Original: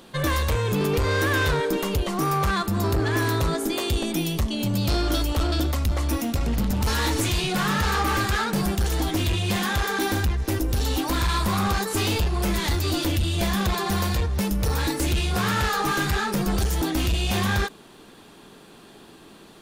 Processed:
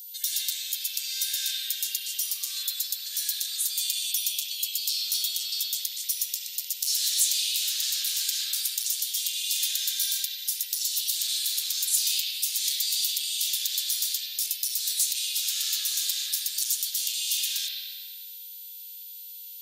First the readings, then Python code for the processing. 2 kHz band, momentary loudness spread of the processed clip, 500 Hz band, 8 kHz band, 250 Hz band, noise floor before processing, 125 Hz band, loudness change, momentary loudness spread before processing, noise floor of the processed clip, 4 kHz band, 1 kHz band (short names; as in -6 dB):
-14.5 dB, 5 LU, under -40 dB, +8.0 dB, under -40 dB, -48 dBFS, under -40 dB, -2.0 dB, 3 LU, -42 dBFS, +3.5 dB, under -35 dB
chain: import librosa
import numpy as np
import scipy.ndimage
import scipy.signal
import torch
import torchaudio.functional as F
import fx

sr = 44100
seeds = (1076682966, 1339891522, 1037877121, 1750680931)

y = scipy.signal.sosfilt(scipy.signal.cheby2(4, 80, 840.0, 'highpass', fs=sr, output='sos'), x)
y = y + 10.0 ** (-48.0 / 20.0) * np.sin(2.0 * np.pi * 14000.0 * np.arange(len(y)) / sr)
y = fx.rev_spring(y, sr, rt60_s=1.8, pass_ms=(60,), chirp_ms=65, drr_db=-9.0)
y = y * 10.0 ** (8.0 / 20.0)